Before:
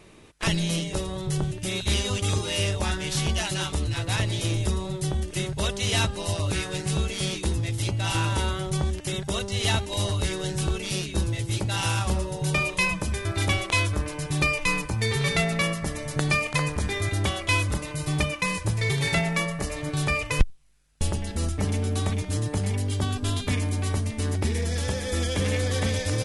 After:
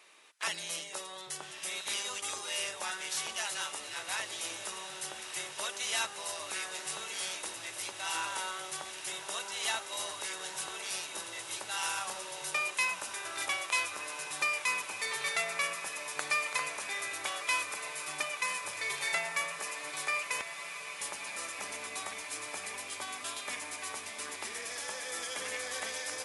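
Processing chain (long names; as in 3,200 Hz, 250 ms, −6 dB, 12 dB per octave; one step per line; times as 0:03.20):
high-pass filter 970 Hz 12 dB per octave
on a send: feedback delay with all-pass diffusion 1,252 ms, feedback 79%, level −11.5 dB
on the sum: dynamic equaliser 3,500 Hz, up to −6 dB, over −42 dBFS, Q 1
level −2.5 dB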